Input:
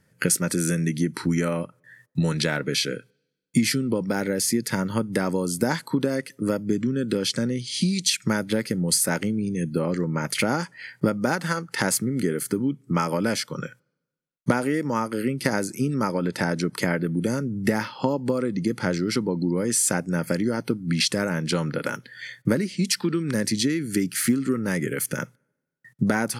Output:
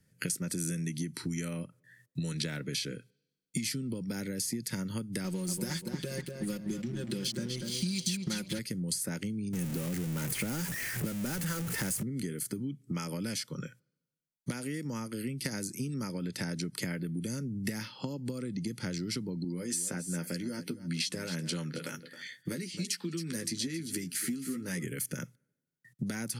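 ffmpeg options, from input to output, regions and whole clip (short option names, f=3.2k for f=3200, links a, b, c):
-filter_complex "[0:a]asettb=1/sr,asplit=3[a][b][c];[a]atrim=end=5.244[d];[b]atrim=start=5.24:end=8.59,asetpts=PTS-STARTPTS,afade=t=in:d=0.004:c=qsin,afade=t=out:st=3.346:d=0.004:c=qsin,aecho=1:1:5.6:0.83,atrim=end_sample=147735,aeval=exprs='sgn(val(0))*max(abs(val(0))-0.0141,0)':c=same,asplit=2[e][f];[f]adelay=241,lowpass=f=4.3k:p=1,volume=-8dB,asplit=2[g][h];[h]adelay=241,lowpass=f=4.3k:p=1,volume=0.37,asplit=2[i][j];[j]adelay=241,lowpass=f=4.3k:p=1,volume=0.37,asplit=2[k][l];[l]adelay=241,lowpass=f=4.3k:p=1,volume=0.37[m];[e][g][i][k][m]amix=inputs=5:normalize=0,atrim=end_sample=147735[n];[c]atrim=start=8.586[o];[d][n]acrossfade=d=0.004:c1=hsin:c2=qsin[p];[p][o]acrossfade=d=0.004:c1=qsin:c2=hsin,asettb=1/sr,asplit=3[q][r][s];[q]atrim=end=9.534[t];[r]atrim=start=9.53:end=12.03,asetpts=PTS-STARTPTS,afade=t=in:d=0.004:c=qsin,afade=t=out:st=2.496:d=0.004:c=qsin,aeval=exprs='val(0)+0.5*0.0891*sgn(val(0))':c=same,equalizer=f=4.1k:t=o:w=1.3:g=-9.5[u];[s]atrim=start=12.026[v];[t][u]acrossfade=d=0.004:c1=hsin:c2=qsin[w];[w][v]acrossfade=d=0.004:c1=qsin:c2=hsin,asettb=1/sr,asplit=3[x][y][z];[x]atrim=end=19.444[aa];[y]atrim=start=19.44:end=24.84,asetpts=PTS-STARTPTS,afade=t=in:d=0.004:c=qsin,afade=t=out:st=5.396:d=0.004:c=qsin,highpass=f=250:p=1,asplit=2[ab][ac];[ac]adelay=12,volume=-6dB[ad];[ab][ad]amix=inputs=2:normalize=0,atrim=end_sample=238140,aecho=1:1:268:0.15,atrim=end_sample=238140[ae];[z]atrim=start=24.836[af];[aa][ae]acrossfade=d=0.004:c1=hsin:c2=qsin[ag];[ag][af]acrossfade=d=0.004:c1=qsin:c2=hsin,equalizer=f=910:t=o:w=2.3:g=-11.5,acrossover=split=190|2000[ah][ai][aj];[ah]acompressor=threshold=-35dB:ratio=4[ak];[ai]acompressor=threshold=-35dB:ratio=4[al];[aj]acompressor=threshold=-30dB:ratio=4[am];[ak][al][am]amix=inputs=3:normalize=0,volume=-3dB"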